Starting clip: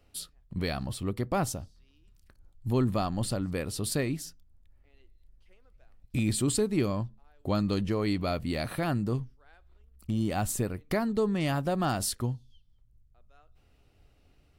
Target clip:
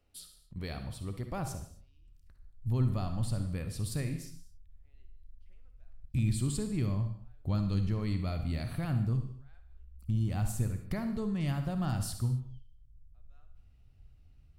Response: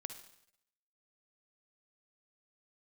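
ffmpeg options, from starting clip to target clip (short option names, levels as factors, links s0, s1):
-filter_complex "[0:a]asubboost=boost=6:cutoff=150[s0];[1:a]atrim=start_sample=2205,afade=t=out:st=0.33:d=0.01,atrim=end_sample=14994[s1];[s0][s1]afir=irnorm=-1:irlink=0,volume=0.531"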